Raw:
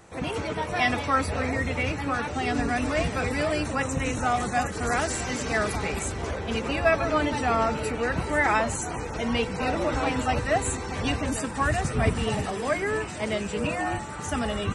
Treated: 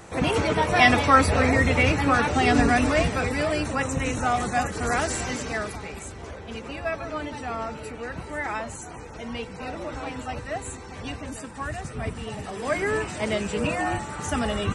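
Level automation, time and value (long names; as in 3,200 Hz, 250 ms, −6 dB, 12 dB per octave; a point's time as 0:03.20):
0:02.64 +7 dB
0:03.30 +1 dB
0:05.26 +1 dB
0:05.83 −7.5 dB
0:12.36 −7.5 dB
0:12.80 +2 dB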